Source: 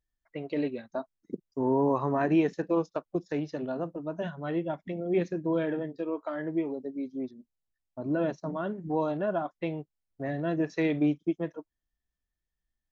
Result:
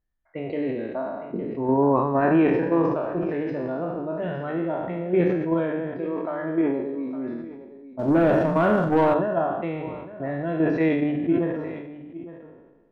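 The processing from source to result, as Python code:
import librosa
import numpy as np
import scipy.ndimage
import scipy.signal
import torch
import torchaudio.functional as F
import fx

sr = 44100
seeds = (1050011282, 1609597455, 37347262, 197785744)

p1 = fx.spec_trails(x, sr, decay_s=1.09)
p2 = fx.air_absorb(p1, sr, metres=290.0)
p3 = p2 + fx.echo_single(p2, sr, ms=860, db=-15.0, dry=0)
p4 = fx.leveller(p3, sr, passes=2, at=(7.99, 9.14))
p5 = fx.hum_notches(p4, sr, base_hz=50, count=10)
p6 = fx.level_steps(p5, sr, step_db=13)
p7 = p5 + (p6 * librosa.db_to_amplitude(1.5))
p8 = fx.high_shelf(p7, sr, hz=3500.0, db=-7.5)
y = fx.sustainer(p8, sr, db_per_s=43.0)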